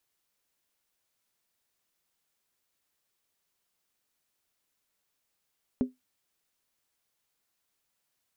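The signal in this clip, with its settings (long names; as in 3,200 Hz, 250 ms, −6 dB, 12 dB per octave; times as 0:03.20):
struck skin, lowest mode 254 Hz, decay 0.17 s, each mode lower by 10 dB, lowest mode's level −19 dB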